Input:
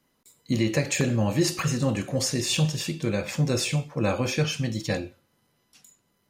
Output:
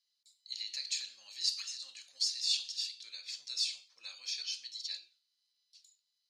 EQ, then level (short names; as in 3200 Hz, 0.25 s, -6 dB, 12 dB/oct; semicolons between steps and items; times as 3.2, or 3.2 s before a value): ladder band-pass 4700 Hz, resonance 70%; high shelf 6300 Hz -4.5 dB; +4.5 dB